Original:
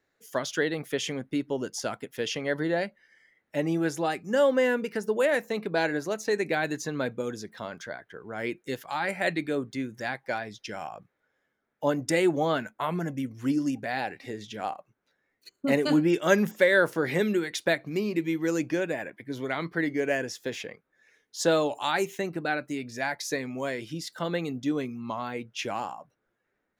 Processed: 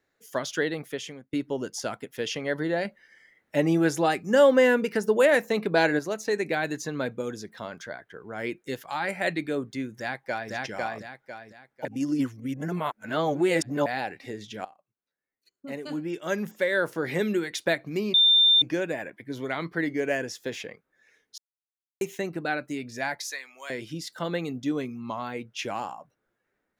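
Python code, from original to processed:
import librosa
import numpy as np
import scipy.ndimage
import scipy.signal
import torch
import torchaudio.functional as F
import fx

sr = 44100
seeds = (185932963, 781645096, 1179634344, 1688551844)

y = fx.echo_throw(x, sr, start_s=9.97, length_s=0.55, ms=500, feedback_pct=35, wet_db=-1.0)
y = fx.highpass(y, sr, hz=1300.0, slope=12, at=(23.27, 23.7))
y = fx.edit(y, sr, fx.fade_out_to(start_s=0.7, length_s=0.63, floor_db=-23.0),
    fx.clip_gain(start_s=2.85, length_s=3.14, db=4.5),
    fx.reverse_span(start_s=11.85, length_s=2.01),
    fx.fade_in_from(start_s=14.65, length_s=2.72, curve='qua', floor_db=-19.5),
    fx.bleep(start_s=18.14, length_s=0.48, hz=3590.0, db=-15.0),
    fx.silence(start_s=21.38, length_s=0.63), tone=tone)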